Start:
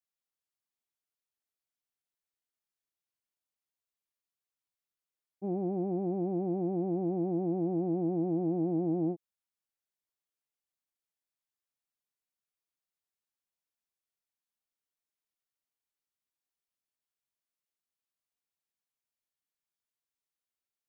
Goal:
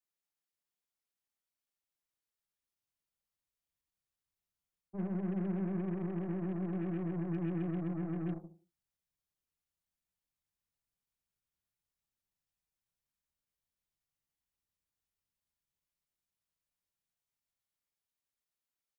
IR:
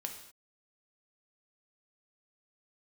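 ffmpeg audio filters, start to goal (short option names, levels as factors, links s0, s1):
-filter_complex "[0:a]aecho=1:1:80|160|240:0.141|0.0579|0.0237,areverse,acompressor=threshold=0.0112:ratio=6,areverse[s0];[1:a]atrim=start_sample=2205,afade=t=out:st=0.23:d=0.01,atrim=end_sample=10584[s1];[s0][s1]afir=irnorm=-1:irlink=0,atempo=1.1,acrossover=split=150[s2][s3];[s2]dynaudnorm=f=580:g=11:m=5.96[s4];[s3]aeval=exprs='0.02*(cos(1*acos(clip(val(0)/0.02,-1,1)))-cos(1*PI/2))+0.00251*(cos(8*acos(clip(val(0)/0.02,-1,1)))-cos(8*PI/2))':c=same[s5];[s4][s5]amix=inputs=2:normalize=0"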